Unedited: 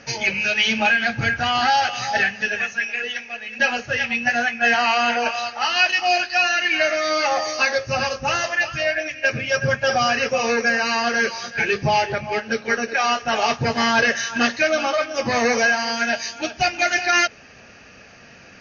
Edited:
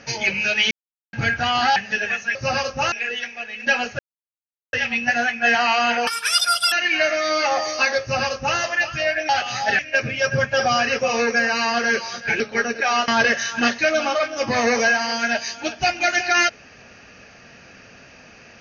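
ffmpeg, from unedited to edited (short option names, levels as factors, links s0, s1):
-filter_complex "[0:a]asplit=13[s0][s1][s2][s3][s4][s5][s6][s7][s8][s9][s10][s11][s12];[s0]atrim=end=0.71,asetpts=PTS-STARTPTS,afade=t=out:st=0.706:d=0.004:c=hsin[s13];[s1]atrim=start=0.71:end=1.13,asetpts=PTS-STARTPTS,volume=0[s14];[s2]atrim=start=1.13:end=1.762,asetpts=PTS-STARTPTS,afade=t=in:d=0.004:c=hsin[s15];[s3]atrim=start=2.258:end=2.852[s16];[s4]atrim=start=7.808:end=8.382[s17];[s5]atrim=start=2.848:end=3.92,asetpts=PTS-STARTPTS,afade=t=out:st=1.068:d=0.004:c=hsin,apad=pad_dur=0.74[s18];[s6]atrim=start=3.92:end=5.264,asetpts=PTS-STARTPTS,afade=t=in:d=0.004:c=hsin[s19];[s7]atrim=start=5.26:end=6.52,asetpts=PTS-STARTPTS,asetrate=85554,aresample=44100,atrim=end_sample=28642,asetpts=PTS-STARTPTS[s20];[s8]atrim=start=6.516:end=9.092[s21];[s9]atrim=start=1.758:end=2.262[s22];[s10]atrim=start=9.088:end=11.702[s23];[s11]atrim=start=12.528:end=13.212[s24];[s12]atrim=start=13.858[s25];[s13][s14][s15]concat=n=3:v=0:a=1[s26];[s26][s16]acrossfade=d=0.004:c1=hsin:c2=hsin[s27];[s27][s17]acrossfade=d=0.004:c1=hsin:c2=hsin[s28];[s18][s19]concat=n=2:v=0:a=1[s29];[s28][s29]acrossfade=d=0.004:c1=hsin:c2=hsin[s30];[s30][s20]acrossfade=d=0.004:c1=hsin:c2=hsin[s31];[s31][s21]acrossfade=d=0.004:c1=hsin:c2=hsin[s32];[s32][s22]acrossfade=d=0.004:c1=hsin:c2=hsin[s33];[s33][s23]acrossfade=d=0.004:c1=hsin:c2=hsin[s34];[s34][s24]acrossfade=d=0.004:c1=hsin:c2=hsin[s35];[s35][s25]acrossfade=d=0.004:c1=hsin:c2=hsin"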